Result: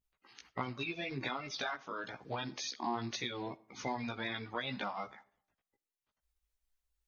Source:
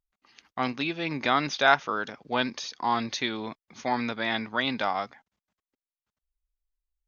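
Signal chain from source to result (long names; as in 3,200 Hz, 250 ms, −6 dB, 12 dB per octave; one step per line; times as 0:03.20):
spectral magnitudes quantised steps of 30 dB
downward compressor 12 to 1, threshold −34 dBFS, peak gain reduction 20 dB
multi-voice chorus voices 2, 0.82 Hz, delay 16 ms, depth 1.3 ms
on a send: convolution reverb RT60 0.60 s, pre-delay 10 ms, DRR 19 dB
on the sum: level +2.5 dB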